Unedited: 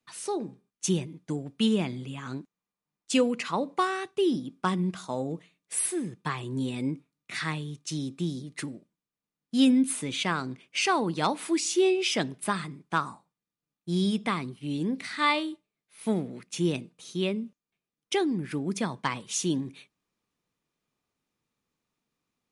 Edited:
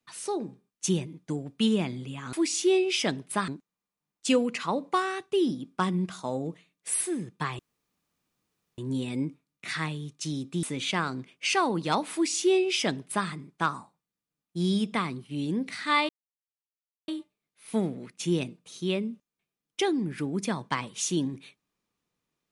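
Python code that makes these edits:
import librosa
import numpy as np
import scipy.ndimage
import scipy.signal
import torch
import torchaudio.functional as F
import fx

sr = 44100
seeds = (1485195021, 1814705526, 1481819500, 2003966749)

y = fx.edit(x, sr, fx.insert_room_tone(at_s=6.44, length_s=1.19),
    fx.cut(start_s=8.29, length_s=1.66),
    fx.duplicate(start_s=11.45, length_s=1.15, to_s=2.33),
    fx.insert_silence(at_s=15.41, length_s=0.99), tone=tone)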